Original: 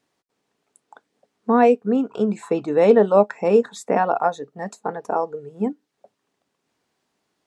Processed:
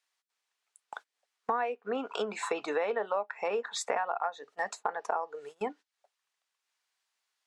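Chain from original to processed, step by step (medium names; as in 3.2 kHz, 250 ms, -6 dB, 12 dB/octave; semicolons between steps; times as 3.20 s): 4.62–5.23 s: low-pass 3.5 kHz 6 dB/octave; low-pass that closes with the level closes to 2.6 kHz, closed at -15.5 dBFS; high-pass 990 Hz 12 dB/octave; gate -53 dBFS, range -22 dB; compression 12:1, threshold -35 dBFS, peak gain reduction 18.5 dB; tape noise reduction on one side only encoder only; trim +7.5 dB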